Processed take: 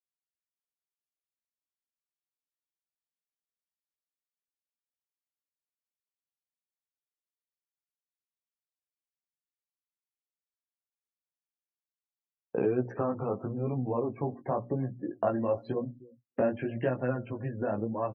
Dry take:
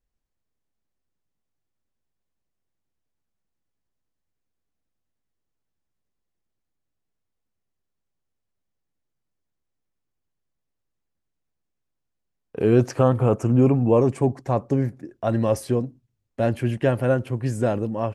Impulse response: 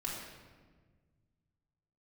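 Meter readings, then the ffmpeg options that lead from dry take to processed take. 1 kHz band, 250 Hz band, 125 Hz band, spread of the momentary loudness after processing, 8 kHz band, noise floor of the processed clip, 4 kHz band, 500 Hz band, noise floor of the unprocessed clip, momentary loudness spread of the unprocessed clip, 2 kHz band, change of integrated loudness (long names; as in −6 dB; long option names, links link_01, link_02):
−7.0 dB, −10.5 dB, −13.5 dB, 6 LU, below −35 dB, below −85 dBFS, can't be measured, −9.0 dB, −80 dBFS, 8 LU, −8.0 dB, −10.5 dB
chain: -filter_complex "[0:a]acompressor=threshold=-35dB:ratio=4,highpass=160,acontrast=71,adynamicequalizer=threshold=0.00891:dfrequency=370:dqfactor=0.77:tfrequency=370:tqfactor=0.77:attack=5:release=100:ratio=0.375:range=2.5:mode=cutabove:tftype=bell,bandreject=frequency=60:width_type=h:width=6,bandreject=frequency=120:width_type=h:width=6,bandreject=frequency=180:width_type=h:width=6,bandreject=frequency=240:width_type=h:width=6,bandreject=frequency=300:width_type=h:width=6,asplit=2[link_01][link_02];[link_02]aecho=0:1:305|610:0.0794|0.0159[link_03];[link_01][link_03]amix=inputs=2:normalize=0,flanger=delay=15.5:depth=5.4:speed=0.94,lowpass=3900,aemphasis=mode=reproduction:type=cd,afftdn=noise_reduction=36:noise_floor=-49,volume=5dB"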